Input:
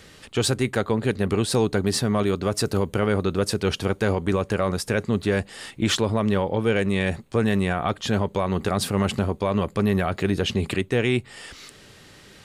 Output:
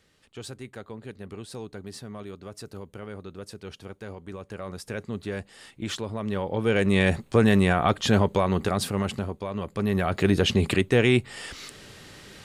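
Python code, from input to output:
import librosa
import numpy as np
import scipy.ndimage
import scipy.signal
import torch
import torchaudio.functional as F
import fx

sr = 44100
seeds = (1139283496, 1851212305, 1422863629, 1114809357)

y = fx.gain(x, sr, db=fx.line((4.27, -17.0), (4.94, -10.0), (6.13, -10.0), (6.98, 2.5), (8.27, 2.5), (9.52, -9.5), (10.27, 2.0)))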